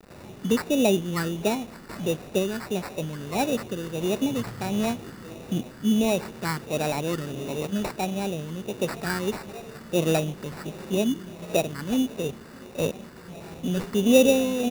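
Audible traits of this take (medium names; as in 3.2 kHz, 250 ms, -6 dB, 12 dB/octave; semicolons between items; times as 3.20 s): a quantiser's noise floor 8-bit, dither none; phasing stages 8, 1.5 Hz, lowest notch 690–2500 Hz; aliases and images of a low sample rate 3.2 kHz, jitter 0%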